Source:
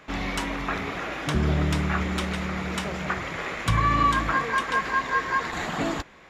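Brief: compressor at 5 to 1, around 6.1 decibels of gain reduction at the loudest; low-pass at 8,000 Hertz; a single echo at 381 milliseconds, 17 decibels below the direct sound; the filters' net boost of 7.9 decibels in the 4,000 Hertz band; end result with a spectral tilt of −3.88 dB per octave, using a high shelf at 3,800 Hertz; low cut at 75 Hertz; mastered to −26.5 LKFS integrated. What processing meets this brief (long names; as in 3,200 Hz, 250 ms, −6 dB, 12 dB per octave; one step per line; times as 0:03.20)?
high-pass filter 75 Hz
low-pass filter 8,000 Hz
high-shelf EQ 3,800 Hz +5.5 dB
parametric band 4,000 Hz +7 dB
downward compressor 5 to 1, threshold −24 dBFS
single-tap delay 381 ms −17 dB
level +1.5 dB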